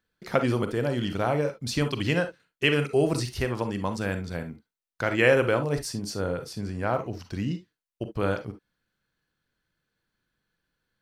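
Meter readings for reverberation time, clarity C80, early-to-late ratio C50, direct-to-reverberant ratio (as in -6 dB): not exponential, 55.0 dB, 11.5 dB, 8.0 dB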